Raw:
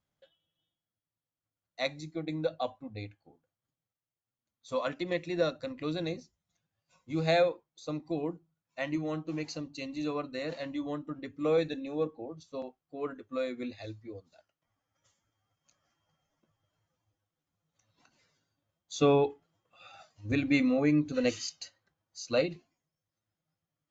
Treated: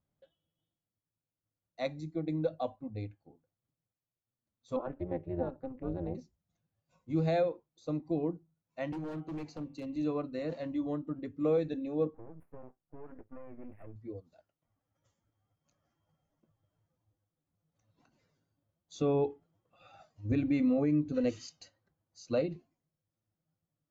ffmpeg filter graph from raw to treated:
-filter_complex "[0:a]asettb=1/sr,asplit=3[s0][s1][s2];[s0]atrim=end=4.764[s3];[s1]atrim=start=4.76:end=6.15,asetpts=PTS-STARTPTS,afade=t=in:d=0.004:c=qsin,afade=t=out:st=1.386:d=0.004:c=qsin,lowpass=1300,tremolo=f=260:d=0.889[s4];[s2]atrim=start=6.146[s5];[s3][s4]acrossfade=d=0.004:c1=hsin:c2=qsin[s6];[s6][s5]acrossfade=d=0.004:c1=qsin:c2=hsin,asettb=1/sr,asplit=3[s7][s8][s9];[s7]atrim=end=8.924[s10];[s8]atrim=start=8.92:end=9.96,asetpts=PTS-STARTPTS,afade=t=in:d=0.004:c=qsin,afade=t=out:st=1.036:d=0.004:c=qsin,bandreject=f=128.9:t=h:w=4,bandreject=f=257.8:t=h:w=4,bandreject=f=386.7:t=h:w=4,bandreject=f=515.6:t=h:w=4,bandreject=f=644.5:t=h:w=4,bandreject=f=773.4:t=h:w=4,bandreject=f=902.3:t=h:w=4,bandreject=f=1031.2:t=h:w=4,bandreject=f=1160.1:t=h:w=4,bandreject=f=1289:t=h:w=4,bandreject=f=1417.9:t=h:w=4,bandreject=f=1546.8:t=h:w=4,bandreject=f=1675.7:t=h:w=4,bandreject=f=1804.6:t=h:w=4,bandreject=f=1933.5:t=h:w=4,bandreject=f=2062.4:t=h:w=4,bandreject=f=2191.3:t=h:w=4,bandreject=f=2320.2:t=h:w=4,bandreject=f=2449.1:t=h:w=4,bandreject=f=2578:t=h:w=4,bandreject=f=2706.9:t=h:w=4,bandreject=f=2835.8:t=h:w=4,bandreject=f=2964.7:t=h:w=4,bandreject=f=3093.6:t=h:w=4,bandreject=f=3222.5:t=h:w=4,bandreject=f=3351.4:t=h:w=4,bandreject=f=3480.3:t=h:w=4,bandreject=f=3609.2:t=h:w=4,acrossover=split=190|410|1200[s11][s12][s13][s14];[s11]acompressor=threshold=0.00562:ratio=3[s15];[s12]acompressor=threshold=0.00794:ratio=3[s16];[s13]acompressor=threshold=0.0112:ratio=3[s17];[s14]acompressor=threshold=0.00562:ratio=3[s18];[s15][s16][s17][s18]amix=inputs=4:normalize=0,aeval=exprs='0.0188*(abs(mod(val(0)/0.0188+3,4)-2)-1)':c=same[s19];[s9]atrim=start=9.956[s20];[s10][s19]acrossfade=d=0.004:c1=hsin:c2=qsin[s21];[s21][s20]acrossfade=d=0.004:c1=qsin:c2=hsin,asettb=1/sr,asplit=3[s22][s23][s24];[s22]atrim=end=12.144[s25];[s23]atrim=start=12.14:end=13.96,asetpts=PTS-STARTPTS,afade=t=in:d=0.004:c=qsin,afade=t=out:st=1.816:d=0.004:c=qsin,aeval=exprs='max(val(0),0)':c=same,asuperstop=centerf=5100:order=8:qfactor=0.68,acompressor=threshold=0.00708:ratio=5:attack=3.2:release=140:knee=1:detection=peak[s26];[s24]atrim=start=13.956[s27];[s25][s26]acrossfade=d=0.004:c1=hsin:c2=qsin[s28];[s28][s27]acrossfade=d=0.004:c1=qsin:c2=hsin,tiltshelf=f=970:g=7,alimiter=limit=0.141:level=0:latency=1:release=172,volume=0.631"

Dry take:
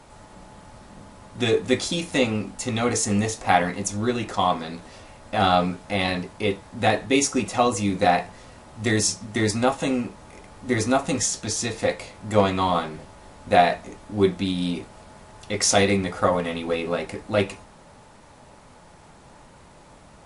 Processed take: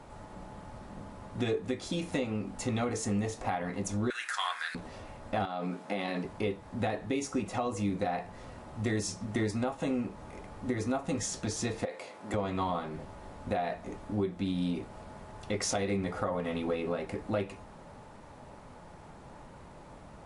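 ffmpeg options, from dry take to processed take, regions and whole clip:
-filter_complex "[0:a]asettb=1/sr,asplit=3[s0][s1][s2];[s0]atrim=end=4.104[s3];[s1]atrim=start=4.1:end=4.75,asetpts=PTS-STARTPTS,afade=t=in:d=0.004:c=qsin,afade=t=out:st=0.646:d=0.004:c=qsin,highpass=f=1600:t=q:w=6,aemphasis=mode=production:type=riaa,tremolo=f=260:d=0.261[s4];[s2]atrim=start=4.746[s5];[s3][s4]acrossfade=d=0.004:c1=hsin:c2=qsin[s6];[s6][s5]acrossfade=d=0.004:c1=qsin:c2=hsin,asettb=1/sr,asplit=3[s7][s8][s9];[s7]atrim=end=5.454[s10];[s8]atrim=start=5.45:end=6.25,asetpts=PTS-STARTPTS,afade=t=in:d=0.004:c=qsin,afade=t=out:st=0.796:d=0.004:c=qsin,acompressor=threshold=0.0708:ratio=6:attack=3.2:release=140:knee=1:detection=peak,highpass=f=180:w=0.5412,highpass=f=180:w=1.3066[s11];[s9]atrim=start=6.246[s12];[s10][s11]acrossfade=d=0.004:c1=hsin:c2=qsin[s13];[s13][s12]acrossfade=d=0.004:c1=qsin:c2=hsin,asettb=1/sr,asplit=3[s14][s15][s16];[s14]atrim=end=11.854[s17];[s15]atrim=start=11.85:end=12.34,asetpts=PTS-STARTPTS,afade=t=in:d=0.004:c=qsin,afade=t=out:st=0.486:d=0.004:c=qsin,highpass=330,acompressor=threshold=0.0562:ratio=4:attack=3.2:release=140:knee=1:detection=peak[s18];[s16]atrim=start=12.336[s19];[s17][s18]acrossfade=d=0.004:c1=hsin:c2=qsin[s20];[s20][s19]acrossfade=d=0.004:c1=qsin:c2=hsin,highshelf=f=2300:g=-9.5,alimiter=limit=0.168:level=0:latency=1:release=347,acompressor=threshold=0.0251:ratio=2"

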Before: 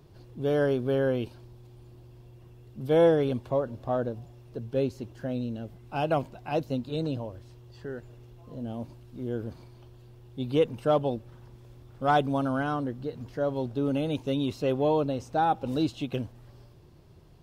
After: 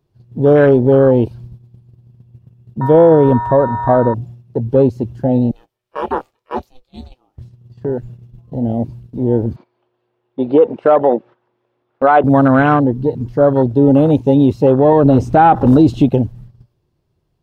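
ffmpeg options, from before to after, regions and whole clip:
-filter_complex "[0:a]asettb=1/sr,asplit=3[s0][s1][s2];[s0]atrim=end=2.814[s3];[s1]atrim=start=2.81:end=4.14,asetpts=PTS-STARTPTS,afade=t=in:d=0.004:c=qsin,afade=t=out:st=1.326:d=0.004:c=qsin,bandreject=f=4200:w=5.5,aeval=exprs='val(0)+0.0158*sin(2*PI*950*n/s)':c=same[s4];[s2]atrim=start=4.136[s5];[s3][s4]acrossfade=d=0.004:c1=hsin:c2=qsin[s6];[s6][s5]acrossfade=d=0.004:c1=qsin:c2=hsin,asettb=1/sr,asplit=3[s7][s8][s9];[s7]atrim=end=5.514[s10];[s8]atrim=start=5.51:end=7.38,asetpts=PTS-STARTPTS,afade=t=in:d=0.004:c=qsin,afade=t=out:st=1.866:d=0.004:c=qsin,highpass=f=1400:p=1,aeval=exprs='val(0)*sin(2*PI*250*n/s)':c=same,asplit=2[s11][s12];[s12]adelay=27,volume=0.282[s13];[s11][s13]amix=inputs=2:normalize=0,atrim=end_sample=82467[s14];[s9]atrim=start=7.376[s15];[s10][s14]acrossfade=d=0.004:c1=hsin:c2=qsin[s16];[s16][s15]acrossfade=d=0.004:c1=qsin:c2=hsin,asettb=1/sr,asplit=3[s17][s18][s19];[s17]atrim=end=9.564[s20];[s18]atrim=start=9.56:end=12.24,asetpts=PTS-STARTPTS,afade=t=in:d=0.004:c=qsin,afade=t=out:st=2.676:d=0.004:c=qsin,acontrast=57,highpass=420,lowpass=2300[s21];[s19]atrim=start=12.236[s22];[s20][s21]acrossfade=d=0.004:c1=hsin:c2=qsin[s23];[s23][s22]acrossfade=d=0.004:c1=qsin:c2=hsin,asettb=1/sr,asplit=3[s24][s25][s26];[s24]atrim=end=14.924[s27];[s25]atrim=start=14.92:end=16.09,asetpts=PTS-STARTPTS,afade=t=in:d=0.004:c=qsin,afade=t=out:st=1.166:d=0.004:c=qsin,acontrast=79,bandreject=f=520:w=8.4[s28];[s26]atrim=start=16.086[s29];[s27][s28]acrossfade=d=0.004:c1=hsin:c2=qsin[s30];[s30][s29]acrossfade=d=0.004:c1=qsin:c2=hsin,afwtdn=0.02,agate=range=0.224:threshold=0.00316:ratio=16:detection=peak,alimiter=level_in=8.91:limit=0.891:release=50:level=0:latency=1,volume=0.891"

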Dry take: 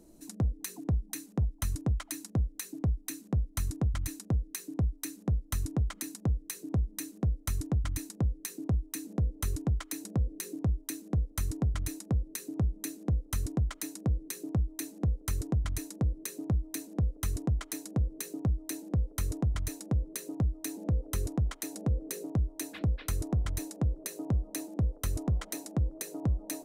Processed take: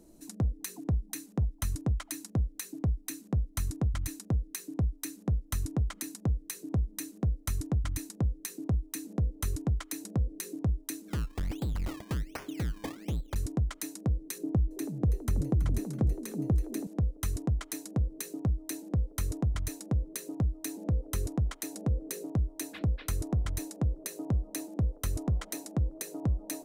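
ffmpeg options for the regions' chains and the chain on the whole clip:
-filter_complex "[0:a]asettb=1/sr,asplit=3[s0][s1][s2];[s0]atrim=end=11.084[s3];[s1]atrim=start=11.08:end=13.36,asetpts=PTS-STARTPTS,afade=t=in:d=0.004:c=qsin,afade=t=out:st=2.276:d=0.004:c=qsin,lowshelf=f=110:g=5.5,acrusher=samples=22:mix=1:aa=0.000001:lfo=1:lforange=22:lforate=1.3,asoftclip=type=hard:threshold=0.0355[s4];[s2]atrim=start=13.356[s5];[s3][s4]acrossfade=d=0.004:c1=hsin:c2=qsin[s6];[s6][s5]acrossfade=d=0.004:c1=qsin:c2=hsin,asettb=1/sr,asplit=3[s7][s8][s9];[s7]atrim=end=14.384[s10];[s8]atrim=start=14.38:end=16.87,asetpts=PTS-STARTPTS,afade=t=in:d=0.004:c=qsin,afade=t=out:st=2.486:d=0.004:c=qsin,tiltshelf=f=970:g=6,acompressor=threshold=0.0708:ratio=3:attack=3.2:release=140:knee=1:detection=peak,asplit=6[s11][s12][s13][s14][s15][s16];[s12]adelay=327,afreqshift=84,volume=0.224[s17];[s13]adelay=654,afreqshift=168,volume=0.11[s18];[s14]adelay=981,afreqshift=252,volume=0.0537[s19];[s15]adelay=1308,afreqshift=336,volume=0.0263[s20];[s16]adelay=1635,afreqshift=420,volume=0.0129[s21];[s11][s17][s18][s19][s20][s21]amix=inputs=6:normalize=0,atrim=end_sample=109809[s22];[s9]atrim=start=16.866[s23];[s10][s22]acrossfade=d=0.004:c1=hsin:c2=qsin[s24];[s24][s23]acrossfade=d=0.004:c1=qsin:c2=hsin"

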